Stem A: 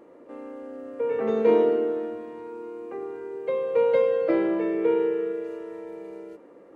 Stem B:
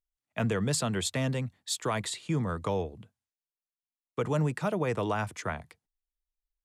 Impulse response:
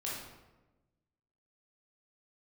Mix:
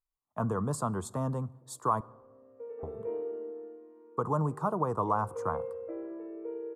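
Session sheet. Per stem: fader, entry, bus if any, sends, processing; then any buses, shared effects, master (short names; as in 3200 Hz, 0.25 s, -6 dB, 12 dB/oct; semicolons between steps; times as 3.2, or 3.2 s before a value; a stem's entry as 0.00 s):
-7.0 dB, 1.60 s, send -6 dB, ladder band-pass 450 Hz, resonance 20%; tilt +2 dB/oct
-3.0 dB, 0.00 s, muted 2.01–2.83, send -22 dB, EQ curve 630 Hz 0 dB, 1100 Hz +12 dB, 2200 Hz -27 dB, 9300 Hz -4 dB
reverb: on, RT60 1.1 s, pre-delay 15 ms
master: dry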